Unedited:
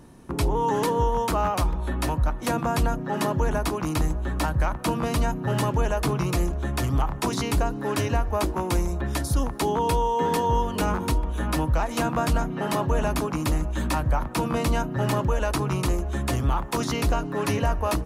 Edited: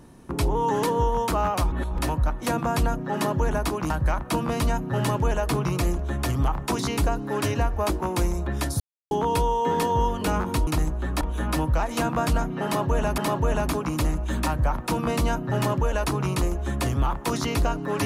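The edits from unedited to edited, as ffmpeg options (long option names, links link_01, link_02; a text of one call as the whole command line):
ffmpeg -i in.wav -filter_complex "[0:a]asplit=9[link_01][link_02][link_03][link_04][link_05][link_06][link_07][link_08][link_09];[link_01]atrim=end=1.722[link_10];[link_02]atrim=start=1.718:end=1.992,asetpts=PTS-STARTPTS,areverse[link_11];[link_03]atrim=start=1.988:end=3.902[link_12];[link_04]atrim=start=4.438:end=9.34,asetpts=PTS-STARTPTS,afade=type=out:start_time=4.898:duration=0.004:curve=hsin[link_13];[link_05]atrim=start=9.34:end=9.65,asetpts=PTS-STARTPTS,volume=0[link_14];[link_06]atrim=start=9.65:end=11.212,asetpts=PTS-STARTPTS,afade=type=in:duration=0.004:curve=hsin[link_15];[link_07]atrim=start=3.898:end=4.442[link_16];[link_08]atrim=start=11.208:end=13.182[link_17];[link_09]atrim=start=12.648[link_18];[link_10][link_11]acrossfade=duration=0.004:curve1=hsin:curve2=hsin[link_19];[link_19][link_12]acrossfade=duration=0.004:curve1=hsin:curve2=hsin[link_20];[link_13][link_14][link_15]concat=n=3:v=0:a=1[link_21];[link_20][link_21]acrossfade=duration=0.004:curve1=hsin:curve2=hsin[link_22];[link_22][link_16]acrossfade=duration=0.004:curve1=hsin:curve2=hsin[link_23];[link_23][link_17]acrossfade=duration=0.004:curve1=hsin:curve2=hsin[link_24];[link_24][link_18]acrossfade=duration=0.004:curve1=hsin:curve2=hsin" out.wav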